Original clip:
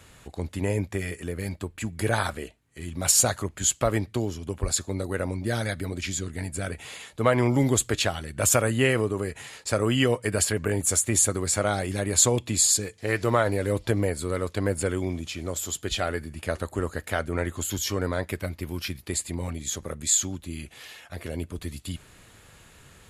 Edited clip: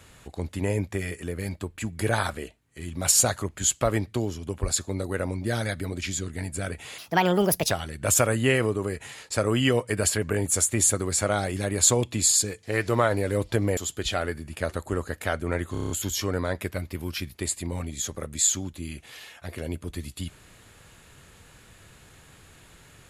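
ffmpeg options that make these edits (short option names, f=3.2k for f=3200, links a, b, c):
-filter_complex "[0:a]asplit=10[a][b][c][d][e][f][g][h][i][j];[a]atrim=end=6.984[k];[b]atrim=start=6.98:end=8.06,asetpts=PTS-STARTPTS,asetrate=65268,aresample=44100,atrim=end_sample=32181,asetpts=PTS-STARTPTS[l];[c]atrim=start=8.056:end=14.122[m];[d]atrim=start=15.628:end=17.612[n];[e]atrim=start=17.578:end=17.612[o];[f]atrim=start=17.578:end=17.612[p];[g]atrim=start=17.578:end=17.612[q];[h]atrim=start=17.578:end=17.612[r];[i]atrim=start=17.578:end=17.612[s];[j]atrim=start=17.578[t];[k][l]acrossfade=d=0.004:c1=hsin:c2=hsin[u];[u][m]acrossfade=d=0.004:c1=hsin:c2=hsin[v];[v][n]acrossfade=d=0.004:c1=hsin:c2=hsin[w];[w][o]acrossfade=d=0.004:c1=hsin:c2=hsin[x];[x][p]acrossfade=d=0.004:c1=hsin:c2=hsin[y];[y][q]acrossfade=d=0.004:c1=hsin:c2=hsin[z];[z][r]acrossfade=d=0.004:c1=hsin:c2=hsin[aa];[aa][s]acrossfade=d=0.004:c1=hsin:c2=hsin[ab];[ab][t]acrossfade=d=0.004:c1=hsin:c2=hsin"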